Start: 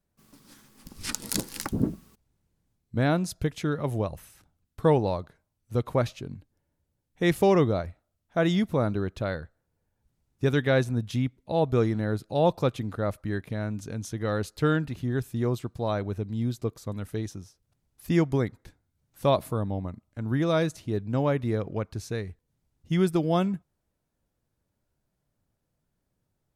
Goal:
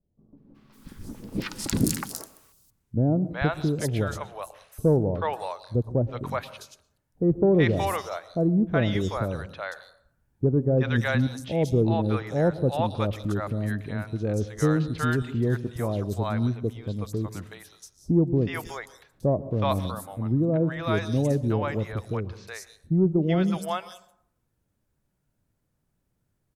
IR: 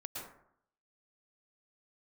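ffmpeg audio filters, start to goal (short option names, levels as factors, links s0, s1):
-filter_complex "[0:a]acrossover=split=650|4200[s0][s1][s2];[s1]adelay=370[s3];[s2]adelay=550[s4];[s0][s3][s4]amix=inputs=3:normalize=0,acontrast=87,asplit=2[s5][s6];[1:a]atrim=start_sample=2205,lowshelf=f=360:g=7[s7];[s6][s7]afir=irnorm=-1:irlink=0,volume=0.168[s8];[s5][s8]amix=inputs=2:normalize=0,volume=0.531"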